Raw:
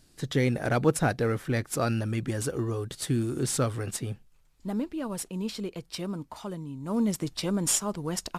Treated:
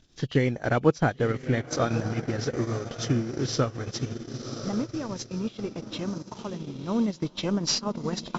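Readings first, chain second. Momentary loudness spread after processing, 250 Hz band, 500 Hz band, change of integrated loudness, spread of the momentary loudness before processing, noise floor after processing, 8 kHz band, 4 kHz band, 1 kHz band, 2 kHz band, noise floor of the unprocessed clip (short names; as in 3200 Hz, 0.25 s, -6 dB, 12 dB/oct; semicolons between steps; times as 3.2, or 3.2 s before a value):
9 LU, +1.5 dB, +2.0 dB, +1.0 dB, 12 LU, -50 dBFS, -5.0 dB, +4.0 dB, +2.0 dB, +1.5 dB, -60 dBFS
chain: nonlinear frequency compression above 2200 Hz 1.5:1; diffused feedback echo 1.056 s, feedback 42%, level -8 dB; transient shaper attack +4 dB, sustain -11 dB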